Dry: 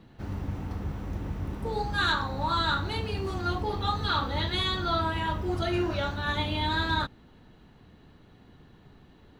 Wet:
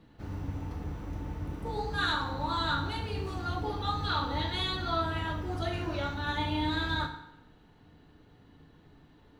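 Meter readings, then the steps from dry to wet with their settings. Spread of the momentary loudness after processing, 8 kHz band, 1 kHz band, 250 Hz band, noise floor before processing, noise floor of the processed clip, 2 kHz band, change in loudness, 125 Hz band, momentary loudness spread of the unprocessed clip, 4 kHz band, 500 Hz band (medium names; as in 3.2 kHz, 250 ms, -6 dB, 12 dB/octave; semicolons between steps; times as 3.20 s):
9 LU, -3.5 dB, -3.5 dB, -2.5 dB, -56 dBFS, -59 dBFS, -3.5 dB, -3.5 dB, -3.0 dB, 9 LU, -3.5 dB, -4.5 dB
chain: FDN reverb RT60 0.87 s, low-frequency decay 0.8×, high-frequency decay 0.8×, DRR 3.5 dB; trim -5 dB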